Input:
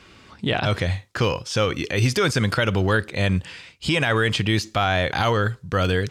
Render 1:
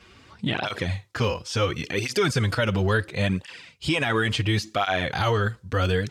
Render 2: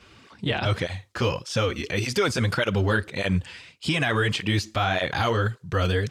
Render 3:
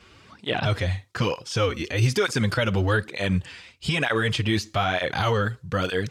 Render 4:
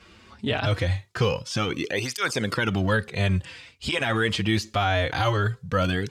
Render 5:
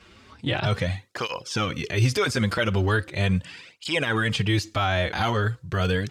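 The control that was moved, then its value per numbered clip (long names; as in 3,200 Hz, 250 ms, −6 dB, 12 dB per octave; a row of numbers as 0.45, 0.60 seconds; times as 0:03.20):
through-zero flanger with one copy inverted, nulls at: 0.72, 1.7, 1.1, 0.23, 0.39 Hertz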